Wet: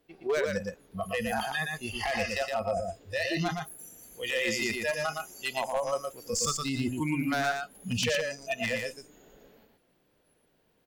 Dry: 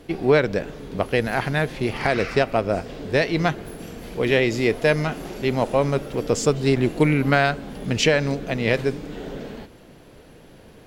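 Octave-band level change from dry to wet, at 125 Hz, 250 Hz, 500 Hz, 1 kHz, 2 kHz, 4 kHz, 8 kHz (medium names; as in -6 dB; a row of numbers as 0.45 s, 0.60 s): -14.0 dB, -11.0 dB, -11.0 dB, -7.0 dB, -7.0 dB, -4.5 dB, 0.0 dB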